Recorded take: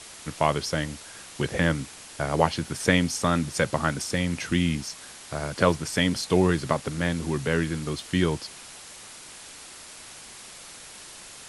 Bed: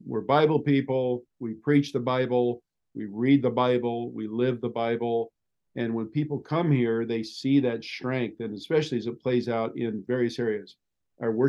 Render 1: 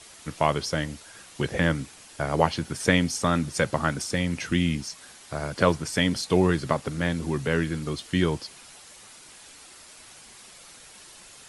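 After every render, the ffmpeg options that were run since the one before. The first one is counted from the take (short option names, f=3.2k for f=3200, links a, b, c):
-af "afftdn=nr=6:nf=-45"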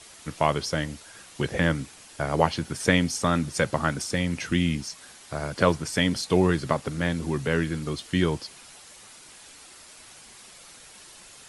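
-af anull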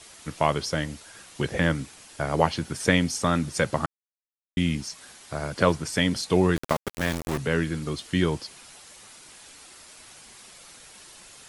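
-filter_complex "[0:a]asettb=1/sr,asplit=3[a][b][c];[a]atrim=end=6.564[d];[b]atrim=start=6.56:end=7.38,asetpts=PTS-STARTPTS,afade=t=in:d=0.004:c=qsin,afade=t=out:st=0.816:d=0.004:c=qsin,aeval=exprs='val(0)*gte(abs(val(0)),0.0531)':c=same[e];[c]atrim=start=7.376[f];[d][e]acrossfade=d=0.004:c1=hsin:c2=qsin[g];[g][f]acrossfade=d=0.004:c1=qsin:c2=hsin,asplit=3[h][i][j];[h]atrim=end=3.86,asetpts=PTS-STARTPTS,afade=t=out:st=3.856:d=0.004:c=hsin[k];[i]atrim=start=3.86:end=4.57,asetpts=PTS-STARTPTS,volume=0[l];[j]atrim=start=4.57,asetpts=PTS-STARTPTS,afade=t=in:d=0.004:c=hsin[m];[k][l][m]concat=n=3:v=0:a=1"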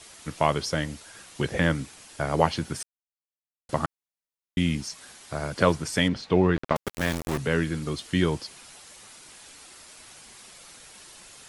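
-filter_complex "[0:a]asettb=1/sr,asplit=3[a][b][c];[a]atrim=end=6.084[d];[b]atrim=start=6.08:end=6.76,asetpts=PTS-STARTPTS,afade=t=in:d=0.004:c=qsin,afade=t=out:st=0.676:d=0.004:c=qsin,lowpass=3k[e];[c]atrim=start=6.756[f];[d][e]acrossfade=d=0.004:c1=hsin:c2=qsin[g];[g][f]acrossfade=d=0.004:c1=qsin:c2=hsin,asplit=3[h][i][j];[h]atrim=end=2.83,asetpts=PTS-STARTPTS,afade=t=out:st=2.826:d=0.004:c=hsin[k];[i]atrim=start=2.83:end=3.69,asetpts=PTS-STARTPTS,volume=0[l];[j]atrim=start=3.69,asetpts=PTS-STARTPTS,afade=t=in:d=0.004:c=hsin[m];[k][l][m]concat=n=3:v=0:a=1"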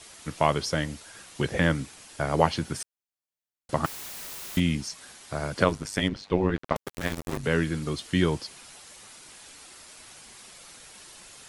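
-filter_complex "[0:a]asettb=1/sr,asplit=3[a][b][c];[a]atrim=end=3.844[d];[b]atrim=start=3.84:end=4.6,asetpts=PTS-STARTPTS,afade=t=in:d=0.004:c=qsin,afade=t=out:st=0.756:d=0.004:c=qsin,aeval=exprs='val(0)+0.5*0.0335*sgn(val(0))':c=same[e];[c]atrim=start=4.596[f];[d][e]acrossfade=d=0.004:c1=hsin:c2=qsin[g];[g][f]acrossfade=d=0.004:c1=qsin:c2=hsin,asettb=1/sr,asplit=3[h][i][j];[h]atrim=end=5.644[k];[i]atrim=start=5.64:end=7.44,asetpts=PTS-STARTPTS,afade=t=in:d=0.004:c=qsin,afade=t=out:st=1.796:d=0.004:c=qsin,tremolo=f=100:d=0.824[l];[j]atrim=start=7.436[m];[k][l]acrossfade=d=0.004:c1=hsin:c2=qsin[n];[n][m]acrossfade=d=0.004:c1=qsin:c2=hsin"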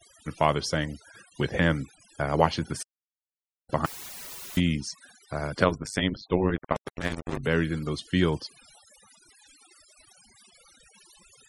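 -af "afftfilt=real='re*gte(hypot(re,im),0.00708)':imag='im*gte(hypot(re,im),0.00708)':win_size=1024:overlap=0.75"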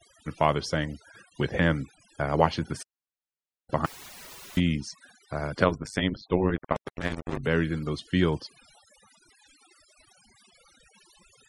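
-af "highshelf=f=5.9k:g=-8"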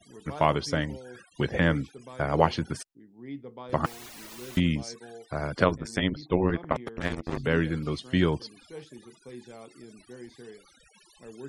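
-filter_complex "[1:a]volume=-19dB[a];[0:a][a]amix=inputs=2:normalize=0"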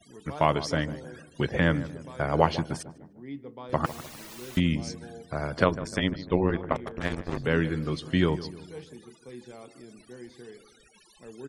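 -filter_complex "[0:a]asplit=2[a][b];[b]adelay=151,lowpass=f=1.3k:p=1,volume=-14dB,asplit=2[c][d];[d]adelay=151,lowpass=f=1.3k:p=1,volume=0.5,asplit=2[e][f];[f]adelay=151,lowpass=f=1.3k:p=1,volume=0.5,asplit=2[g][h];[h]adelay=151,lowpass=f=1.3k:p=1,volume=0.5,asplit=2[i][j];[j]adelay=151,lowpass=f=1.3k:p=1,volume=0.5[k];[a][c][e][g][i][k]amix=inputs=6:normalize=0"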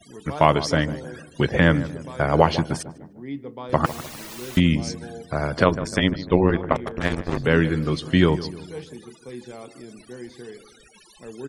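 -af "volume=6.5dB,alimiter=limit=-1dB:level=0:latency=1"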